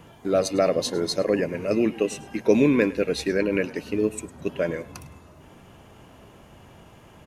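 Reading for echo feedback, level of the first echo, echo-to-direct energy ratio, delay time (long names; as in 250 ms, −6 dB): 21%, −19.5 dB, −19.5 dB, 104 ms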